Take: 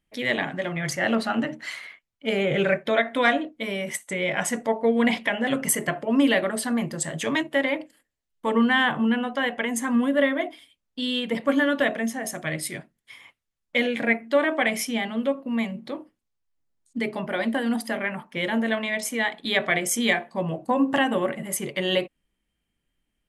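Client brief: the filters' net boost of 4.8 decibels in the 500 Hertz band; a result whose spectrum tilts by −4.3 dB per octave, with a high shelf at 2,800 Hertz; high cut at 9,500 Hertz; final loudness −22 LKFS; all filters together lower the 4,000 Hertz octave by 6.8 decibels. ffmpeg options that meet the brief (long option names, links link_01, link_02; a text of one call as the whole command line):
ffmpeg -i in.wav -af "lowpass=9500,equalizer=frequency=500:width_type=o:gain=6,highshelf=frequency=2800:gain=-6,equalizer=frequency=4000:width_type=o:gain=-5,volume=1.5dB" out.wav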